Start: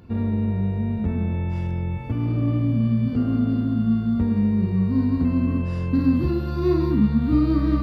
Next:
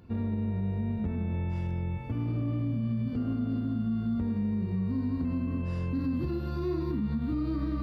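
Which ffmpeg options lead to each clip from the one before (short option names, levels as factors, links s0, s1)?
-af "alimiter=limit=0.141:level=0:latency=1:release=89,volume=0.501"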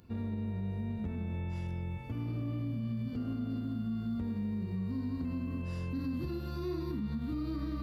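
-af "highshelf=f=3800:g=11.5,volume=0.531"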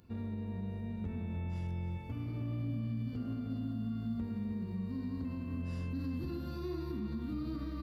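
-filter_complex "[0:a]asplit=2[s0][s1];[s1]adelay=309,volume=0.398,highshelf=f=4000:g=-6.95[s2];[s0][s2]amix=inputs=2:normalize=0,volume=0.708"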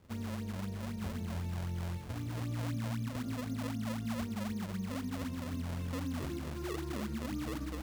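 -af "acrusher=samples=33:mix=1:aa=0.000001:lfo=1:lforange=52.8:lforate=3.9"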